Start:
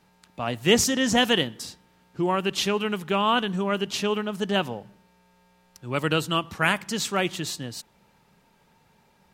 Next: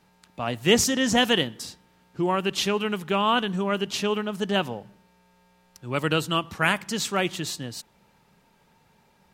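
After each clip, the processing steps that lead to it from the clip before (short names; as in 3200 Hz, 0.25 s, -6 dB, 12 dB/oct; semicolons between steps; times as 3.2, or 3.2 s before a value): nothing audible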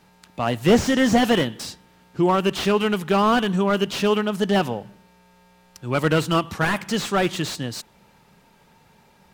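slew limiter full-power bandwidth 89 Hz; gain +6 dB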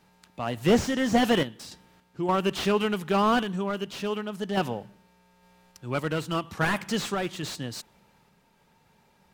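random-step tremolo 3.5 Hz; gain -3.5 dB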